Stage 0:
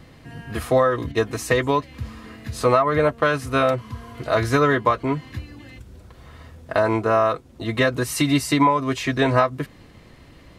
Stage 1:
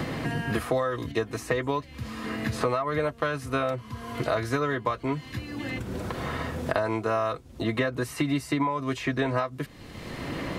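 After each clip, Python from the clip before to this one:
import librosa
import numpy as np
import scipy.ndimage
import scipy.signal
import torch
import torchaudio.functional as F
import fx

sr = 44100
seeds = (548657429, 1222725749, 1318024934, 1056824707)

y = fx.band_squash(x, sr, depth_pct=100)
y = y * librosa.db_to_amplitude(-8.0)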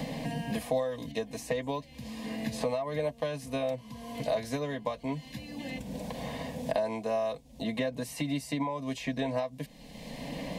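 y = fx.fixed_phaser(x, sr, hz=360.0, stages=6)
y = y * librosa.db_to_amplitude(-1.5)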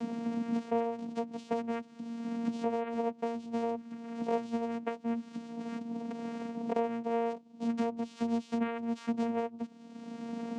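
y = fx.vocoder(x, sr, bands=4, carrier='saw', carrier_hz=232.0)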